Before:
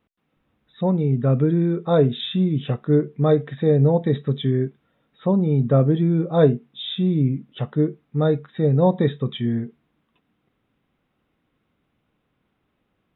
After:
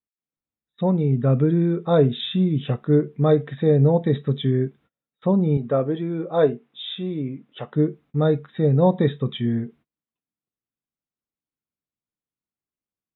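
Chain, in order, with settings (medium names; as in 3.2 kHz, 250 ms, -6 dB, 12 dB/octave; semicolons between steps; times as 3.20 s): gate -48 dBFS, range -28 dB; 5.57–7.73 s: tone controls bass -13 dB, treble -6 dB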